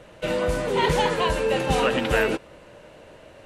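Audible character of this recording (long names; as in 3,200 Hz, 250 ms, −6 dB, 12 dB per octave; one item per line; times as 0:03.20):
background noise floor −49 dBFS
spectral slope −4.5 dB per octave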